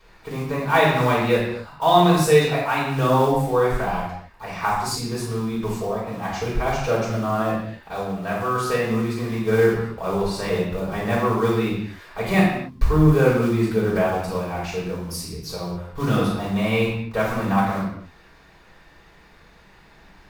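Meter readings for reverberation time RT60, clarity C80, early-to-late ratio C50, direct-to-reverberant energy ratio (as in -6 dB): not exponential, 5.0 dB, 1.5 dB, -6.5 dB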